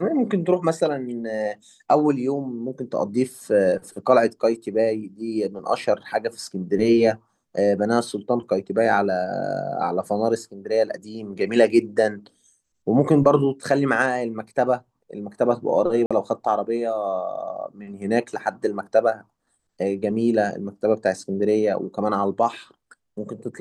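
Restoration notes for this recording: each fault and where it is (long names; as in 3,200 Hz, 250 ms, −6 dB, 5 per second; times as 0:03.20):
0:13.64: drop-out 3 ms
0:16.06–0:16.11: drop-out 46 ms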